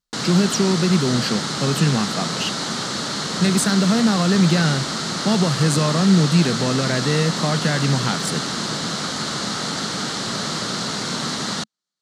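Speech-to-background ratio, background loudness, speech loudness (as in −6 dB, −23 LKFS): 4.0 dB, −24.0 LKFS, −20.0 LKFS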